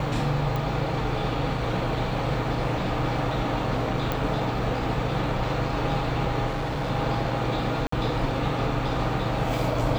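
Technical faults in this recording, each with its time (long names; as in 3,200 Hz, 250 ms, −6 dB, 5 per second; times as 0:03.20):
0:00.56: click
0:04.12: click
0:06.46–0:06.91: clipping −24.5 dBFS
0:07.87–0:07.92: drop-out 54 ms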